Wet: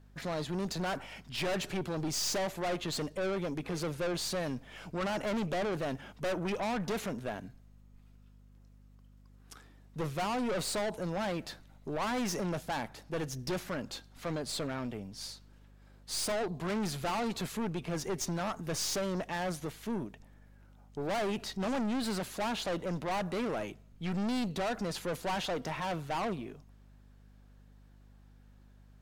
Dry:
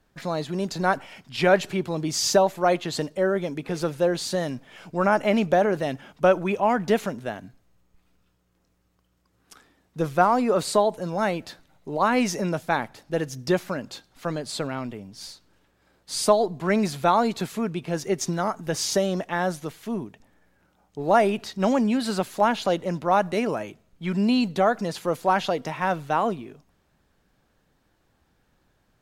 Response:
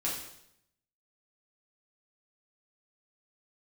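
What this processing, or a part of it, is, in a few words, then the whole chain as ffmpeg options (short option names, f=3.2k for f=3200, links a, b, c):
valve amplifier with mains hum: -af "aeval=exprs='(tanh(28.2*val(0)+0.35)-tanh(0.35))/28.2':c=same,aeval=exprs='val(0)+0.00178*(sin(2*PI*50*n/s)+sin(2*PI*2*50*n/s)/2+sin(2*PI*3*50*n/s)/3+sin(2*PI*4*50*n/s)/4+sin(2*PI*5*50*n/s)/5)':c=same,volume=-1.5dB"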